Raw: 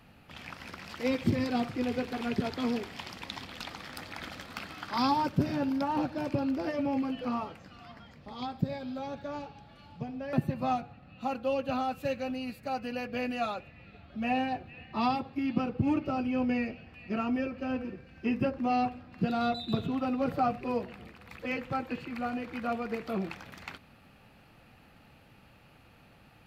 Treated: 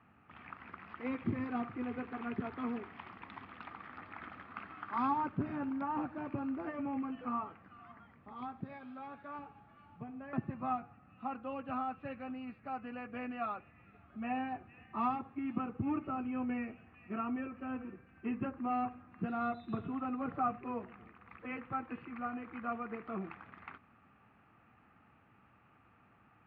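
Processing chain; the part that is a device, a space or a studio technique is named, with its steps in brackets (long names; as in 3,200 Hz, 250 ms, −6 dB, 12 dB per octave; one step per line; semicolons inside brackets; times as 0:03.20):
bass cabinet (loudspeaker in its box 84–2,300 Hz, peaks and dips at 150 Hz −5 dB, 540 Hz −8 dB, 1,200 Hz +8 dB)
0:08.62–0:09.39: spectral tilt +2 dB per octave
level −6.5 dB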